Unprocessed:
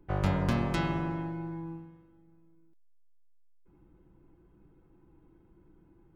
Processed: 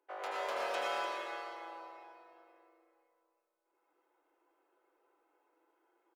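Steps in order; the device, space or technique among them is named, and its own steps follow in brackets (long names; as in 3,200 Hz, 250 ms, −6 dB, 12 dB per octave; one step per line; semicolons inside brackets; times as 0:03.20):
inverse Chebyshev high-pass filter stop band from 190 Hz, stop band 50 dB
slap from a distant wall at 20 metres, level −8 dB
cave (single-tap delay 297 ms −13 dB; convolution reverb RT60 2.9 s, pre-delay 74 ms, DRR −5 dB)
level −7 dB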